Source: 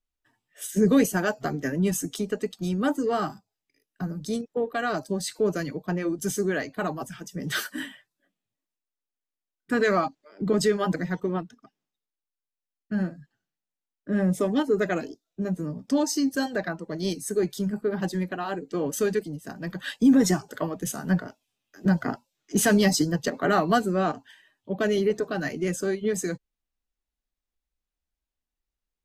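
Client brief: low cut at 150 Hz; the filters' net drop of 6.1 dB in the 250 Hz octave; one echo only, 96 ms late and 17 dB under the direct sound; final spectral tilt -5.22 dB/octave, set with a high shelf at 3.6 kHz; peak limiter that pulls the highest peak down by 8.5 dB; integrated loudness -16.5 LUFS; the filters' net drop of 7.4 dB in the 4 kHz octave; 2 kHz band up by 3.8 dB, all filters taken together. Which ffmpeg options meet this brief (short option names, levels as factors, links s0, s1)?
-af "highpass=150,equalizer=f=250:t=o:g=-7,equalizer=f=2000:t=o:g=8.5,highshelf=f=3600:g=-7.5,equalizer=f=4000:t=o:g=-8,alimiter=limit=0.133:level=0:latency=1,aecho=1:1:96:0.141,volume=5.01"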